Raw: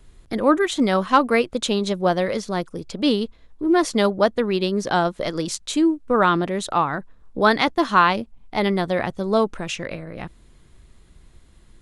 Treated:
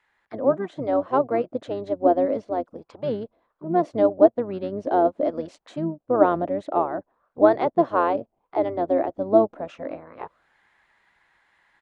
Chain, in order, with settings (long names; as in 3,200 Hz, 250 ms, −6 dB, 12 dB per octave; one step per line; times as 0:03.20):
envelope filter 630–2,000 Hz, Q 4.4, down, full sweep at −24.5 dBFS
speech leveller within 4 dB 2 s
pitch-shifted copies added −12 semitones −6 dB, −7 semitones −18 dB
level +4.5 dB